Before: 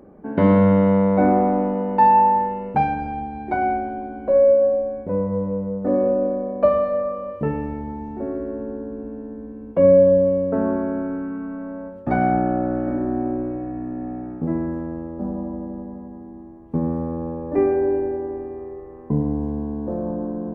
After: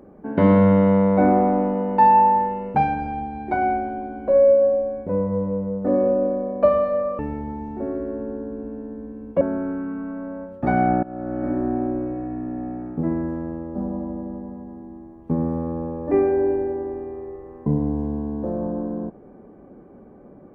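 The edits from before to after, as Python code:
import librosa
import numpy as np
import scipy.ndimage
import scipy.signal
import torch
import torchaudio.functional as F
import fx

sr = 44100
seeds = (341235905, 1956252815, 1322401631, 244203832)

y = fx.edit(x, sr, fx.cut(start_s=7.19, length_s=0.4),
    fx.cut(start_s=9.81, length_s=1.04),
    fx.fade_in_from(start_s=12.47, length_s=0.49, floor_db=-21.5), tone=tone)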